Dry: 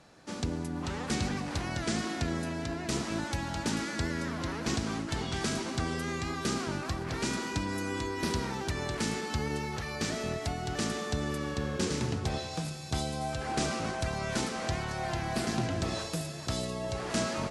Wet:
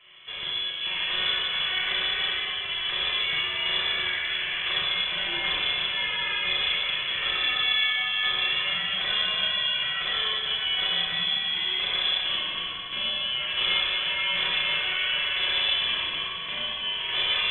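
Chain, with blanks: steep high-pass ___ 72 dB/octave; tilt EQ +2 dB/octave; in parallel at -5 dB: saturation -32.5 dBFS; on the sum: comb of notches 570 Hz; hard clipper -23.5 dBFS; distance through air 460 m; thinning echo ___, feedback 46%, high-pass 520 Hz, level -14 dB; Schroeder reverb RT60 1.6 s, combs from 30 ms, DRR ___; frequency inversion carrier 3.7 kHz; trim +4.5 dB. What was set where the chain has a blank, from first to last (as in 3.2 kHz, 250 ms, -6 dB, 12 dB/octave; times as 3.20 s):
230 Hz, 286 ms, -5.5 dB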